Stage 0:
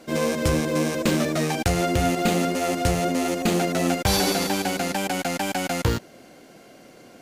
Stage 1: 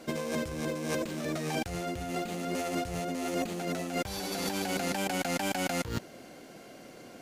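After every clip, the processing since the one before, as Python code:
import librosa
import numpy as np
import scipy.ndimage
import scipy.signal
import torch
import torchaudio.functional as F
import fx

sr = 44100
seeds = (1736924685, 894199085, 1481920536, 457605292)

y = fx.over_compress(x, sr, threshold_db=-28.0, ratio=-1.0)
y = y * librosa.db_to_amplitude(-5.5)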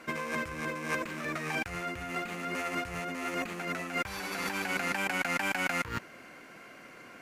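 y = fx.band_shelf(x, sr, hz=1600.0, db=11.5, octaves=1.7)
y = y * librosa.db_to_amplitude(-5.0)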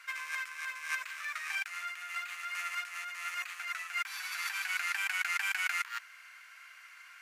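y = scipy.signal.sosfilt(scipy.signal.butter(4, 1300.0, 'highpass', fs=sr, output='sos'), x)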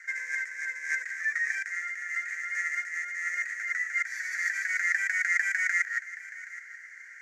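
y = fx.curve_eq(x, sr, hz=(210.0, 310.0, 450.0, 700.0, 1100.0, 1900.0, 2700.0, 4000.0, 6600.0, 10000.0), db=(0, 9, 9, -11, -22, 14, -21, -16, 4, -15))
y = y + 10.0 ** (-16.5 / 20.0) * np.pad(y, (int(774 * sr / 1000.0), 0))[:len(y)]
y = y * librosa.db_to_amplitude(3.0)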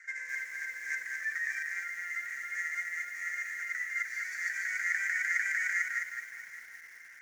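y = fx.doubler(x, sr, ms=48.0, db=-14.0)
y = fx.echo_crushed(y, sr, ms=211, feedback_pct=35, bits=8, wet_db=-4.5)
y = y * librosa.db_to_amplitude(-5.5)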